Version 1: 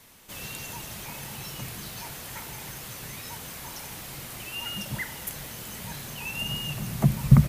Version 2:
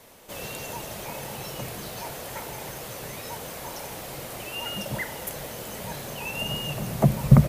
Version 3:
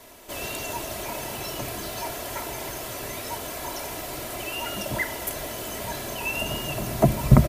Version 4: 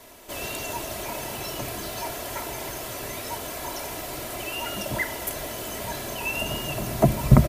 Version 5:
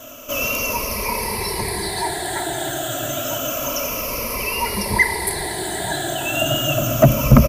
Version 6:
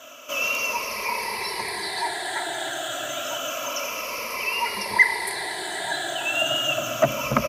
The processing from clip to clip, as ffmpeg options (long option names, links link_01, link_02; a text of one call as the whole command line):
ffmpeg -i in.wav -af "equalizer=frequency=550:width=1:gain=11.5" out.wav
ffmpeg -i in.wav -af "aecho=1:1:3:0.55,volume=2.5dB" out.wav
ffmpeg -i in.wav -af anull out.wav
ffmpeg -i in.wav -af "afftfilt=real='re*pow(10,17/40*sin(2*PI*(0.87*log(max(b,1)*sr/1024/100)/log(2)-(-0.29)*(pts-256)/sr)))':imag='im*pow(10,17/40*sin(2*PI*(0.87*log(max(b,1)*sr/1024/100)/log(2)-(-0.29)*(pts-256)/sr)))':win_size=1024:overlap=0.75,acontrast=74,volume=-1dB" out.wav
ffmpeg -i in.wav -af "bandpass=frequency=2100:width_type=q:width=0.52:csg=0" out.wav